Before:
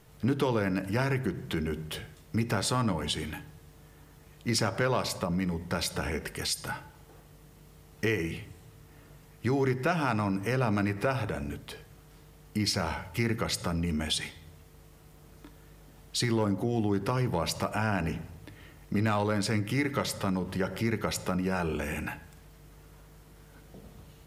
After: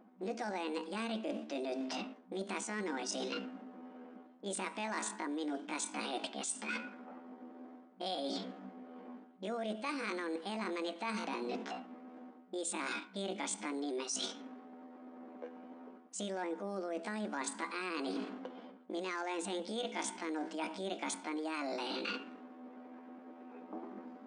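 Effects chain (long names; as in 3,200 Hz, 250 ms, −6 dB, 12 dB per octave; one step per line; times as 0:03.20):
low-pass that shuts in the quiet parts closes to 520 Hz, open at −26 dBFS
pitch shifter +9 semitones
brick-wall band-pass 190–9,700 Hz
reversed playback
downward compressor 10 to 1, threshold −42 dBFS, peak gain reduction 19 dB
reversed playback
level +6 dB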